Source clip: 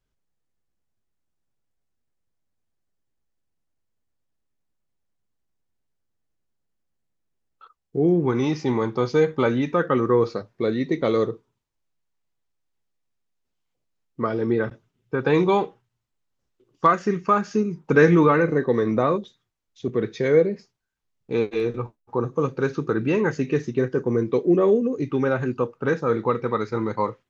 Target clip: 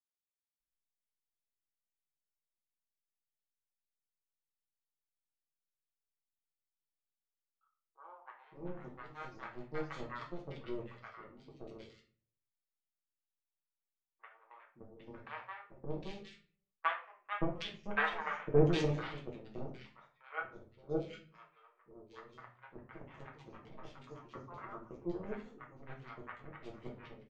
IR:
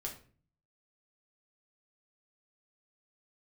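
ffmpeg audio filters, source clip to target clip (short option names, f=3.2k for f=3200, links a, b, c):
-filter_complex "[0:a]aeval=exprs='0.668*(cos(1*acos(clip(val(0)/0.668,-1,1)))-cos(1*PI/2))+0.237*(cos(3*acos(clip(val(0)/0.668,-1,1)))-cos(3*PI/2))':c=same,acrossover=split=740|2600[a][b][c];[a]adelay=570[d];[c]adelay=760[e];[d][b][e]amix=inputs=3:normalize=0[f];[1:a]atrim=start_sample=2205[g];[f][g]afir=irnorm=-1:irlink=0,volume=-4dB"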